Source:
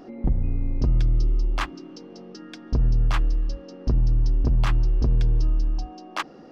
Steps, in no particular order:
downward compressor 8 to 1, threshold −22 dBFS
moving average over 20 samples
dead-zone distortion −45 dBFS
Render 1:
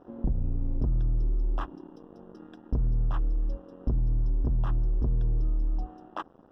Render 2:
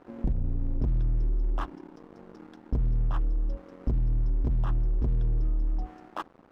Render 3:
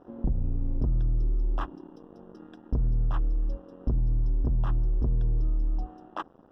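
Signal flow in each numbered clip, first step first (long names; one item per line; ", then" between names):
downward compressor, then dead-zone distortion, then moving average
moving average, then downward compressor, then dead-zone distortion
dead-zone distortion, then moving average, then downward compressor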